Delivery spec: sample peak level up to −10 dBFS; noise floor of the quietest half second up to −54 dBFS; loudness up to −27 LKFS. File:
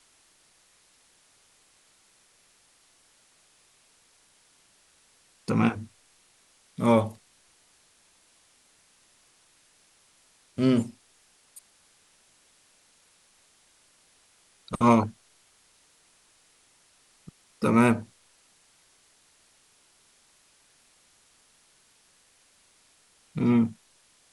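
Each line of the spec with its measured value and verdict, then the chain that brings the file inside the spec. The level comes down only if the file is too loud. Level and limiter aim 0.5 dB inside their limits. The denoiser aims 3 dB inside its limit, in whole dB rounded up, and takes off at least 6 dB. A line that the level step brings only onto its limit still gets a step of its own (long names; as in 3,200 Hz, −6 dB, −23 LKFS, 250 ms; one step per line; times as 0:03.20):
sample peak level −7.5 dBFS: out of spec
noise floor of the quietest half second −63 dBFS: in spec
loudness −25.5 LKFS: out of spec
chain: level −2 dB
brickwall limiter −10.5 dBFS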